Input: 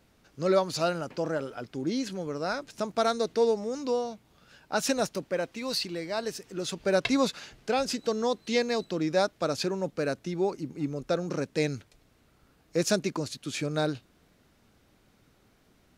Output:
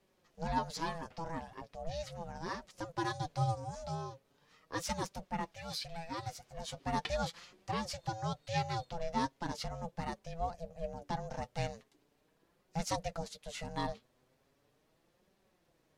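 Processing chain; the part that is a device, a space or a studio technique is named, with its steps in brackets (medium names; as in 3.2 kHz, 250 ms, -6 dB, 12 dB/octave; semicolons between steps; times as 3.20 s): alien voice (ring modulator 330 Hz; flange 0.39 Hz, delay 5.1 ms, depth 3.1 ms, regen +35%); 3.36–3.95 s: peaking EQ 8.7 kHz +8.5 dB 0.52 oct; trim -3 dB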